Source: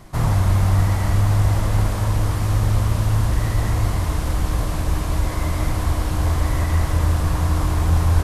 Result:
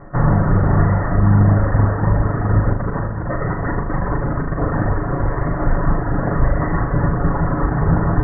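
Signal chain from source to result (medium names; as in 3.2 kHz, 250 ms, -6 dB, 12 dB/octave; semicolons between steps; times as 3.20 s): comb filter that takes the minimum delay 7.1 ms; reverb removal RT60 0.87 s; 2.73–4.89 s: compressor with a negative ratio -27 dBFS, ratio -1; rippled Chebyshev low-pass 1.9 kHz, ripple 3 dB; flutter echo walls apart 6.8 m, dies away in 0.46 s; loudness maximiser +11.5 dB; trim -3 dB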